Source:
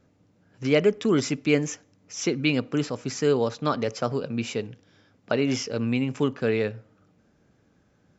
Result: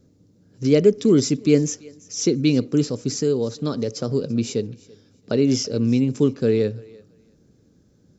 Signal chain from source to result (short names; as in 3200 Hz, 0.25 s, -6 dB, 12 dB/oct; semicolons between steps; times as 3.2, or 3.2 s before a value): band shelf 1400 Hz -13 dB 2.6 oct; 3.14–4.09 compressor 1.5:1, threshold -31 dBFS, peak gain reduction 5 dB; thinning echo 0.336 s, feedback 21%, high-pass 420 Hz, level -21.5 dB; gain +6.5 dB